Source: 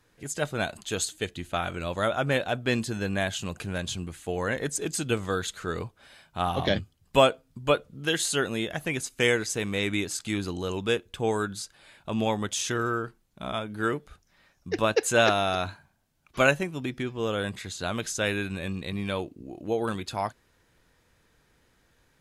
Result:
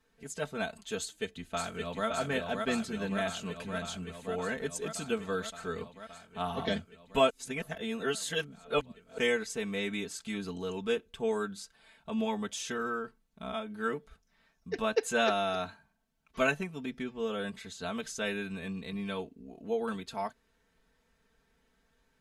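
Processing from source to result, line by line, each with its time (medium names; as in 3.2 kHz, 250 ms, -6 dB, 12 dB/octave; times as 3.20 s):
0.99–2.07 s: echo throw 570 ms, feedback 80%, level -3.5 dB
7.30–9.18 s: reverse
whole clip: treble shelf 5.2 kHz -5 dB; comb 4.5 ms, depth 93%; trim -8.5 dB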